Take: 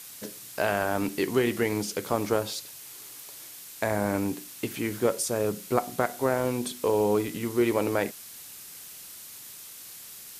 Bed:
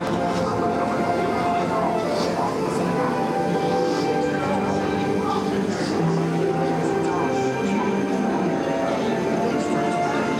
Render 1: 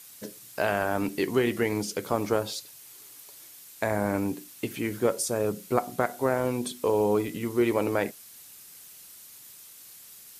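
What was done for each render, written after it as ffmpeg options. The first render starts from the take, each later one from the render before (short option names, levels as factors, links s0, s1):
-af "afftdn=nr=6:nf=-45"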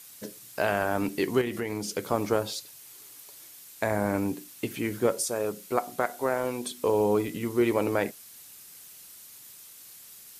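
-filter_complex "[0:a]asettb=1/sr,asplit=3[s0][s1][s2];[s0]atrim=end=1.414[s3];[s1]atrim=start=1.41:end=1.85,asetpts=PTS-STARTPTS,afade=t=in:d=0.004:c=qsin,afade=t=out:st=0.436:d=0.004:c=qsin,acompressor=threshold=0.0398:ratio=3:attack=3.2:release=140:knee=1:detection=peak[s4];[s2]atrim=start=1.846[s5];[s3][s4]acrossfade=d=0.004:c1=hsin:c2=qsin[s6];[s6][s5]acrossfade=d=0.004:c1=qsin:c2=hsin,asettb=1/sr,asplit=3[s7][s8][s9];[s7]atrim=end=5.244[s10];[s8]atrim=start=5.24:end=6.78,asetpts=PTS-STARTPTS,afade=t=in:d=0.004:c=qsin,afade=t=out:st=1.536:d=0.004:c=qsin,equalizer=f=110:t=o:w=2.6:g=-9[s11];[s9]atrim=start=6.776[s12];[s10][s11]acrossfade=d=0.004:c1=hsin:c2=qsin[s13];[s13][s12]acrossfade=d=0.004:c1=qsin:c2=hsin"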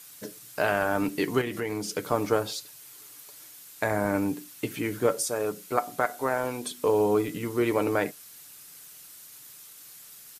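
-af "equalizer=f=1400:t=o:w=0.61:g=3,aecho=1:1:6.7:0.33"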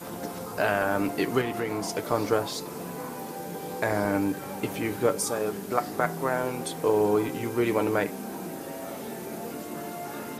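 -filter_complex "[1:a]volume=0.188[s0];[0:a][s0]amix=inputs=2:normalize=0"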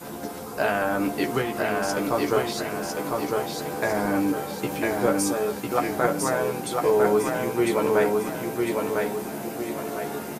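-filter_complex "[0:a]asplit=2[s0][s1];[s1]adelay=14,volume=0.562[s2];[s0][s2]amix=inputs=2:normalize=0,aecho=1:1:1002|2004|3006|4008|5010:0.708|0.297|0.125|0.0525|0.022"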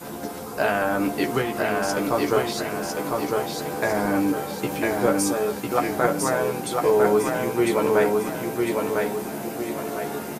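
-af "volume=1.19"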